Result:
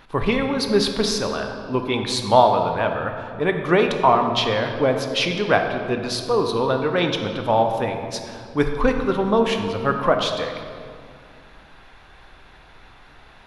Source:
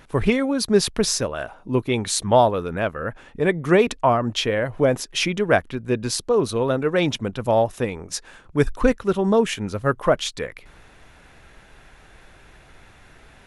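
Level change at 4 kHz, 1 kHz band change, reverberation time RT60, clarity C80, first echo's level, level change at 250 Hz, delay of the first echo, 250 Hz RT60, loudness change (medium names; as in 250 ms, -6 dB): +2.5 dB, +4.5 dB, 2.2 s, 7.0 dB, no echo, -0.5 dB, no echo, 3.0 s, +0.5 dB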